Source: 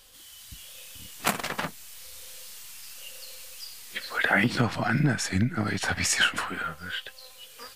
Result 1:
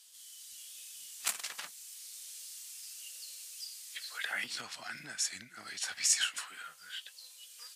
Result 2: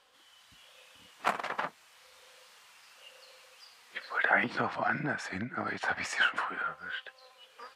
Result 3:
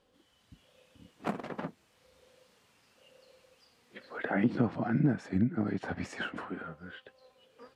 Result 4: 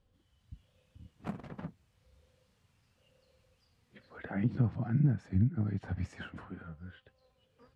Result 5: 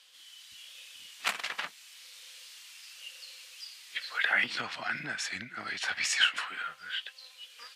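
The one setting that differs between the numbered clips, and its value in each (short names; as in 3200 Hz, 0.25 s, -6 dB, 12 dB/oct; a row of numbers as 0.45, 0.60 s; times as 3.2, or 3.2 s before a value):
band-pass, frequency: 7700, 970, 300, 100, 2900 Hz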